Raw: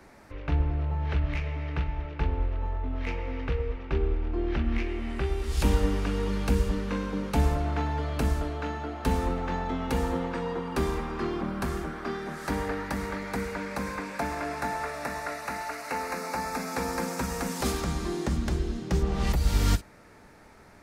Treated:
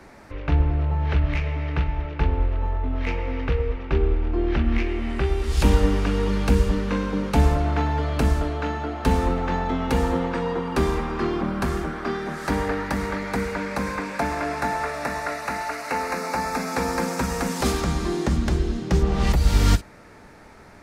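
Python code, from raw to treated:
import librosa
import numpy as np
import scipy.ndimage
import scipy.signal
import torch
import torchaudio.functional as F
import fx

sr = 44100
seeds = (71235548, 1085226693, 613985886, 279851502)

y = fx.high_shelf(x, sr, hz=10000.0, db=-6.5)
y = y * librosa.db_to_amplitude(6.0)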